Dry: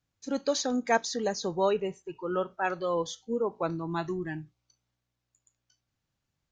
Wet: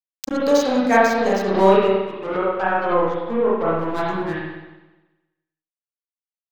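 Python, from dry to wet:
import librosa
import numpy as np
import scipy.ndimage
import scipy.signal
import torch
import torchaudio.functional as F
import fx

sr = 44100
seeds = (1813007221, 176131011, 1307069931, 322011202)

y = np.sign(x) * np.maximum(np.abs(x) - 10.0 ** (-37.0 / 20.0), 0.0)
y = fx.env_lowpass_down(y, sr, base_hz=1500.0, full_db=-28.0, at=(2.11, 3.79))
y = fx.rev_spring(y, sr, rt60_s=1.1, pass_ms=(31, 52), chirp_ms=50, drr_db=-8.0)
y = fx.pre_swell(y, sr, db_per_s=91.0)
y = F.gain(torch.from_numpy(y), 5.0).numpy()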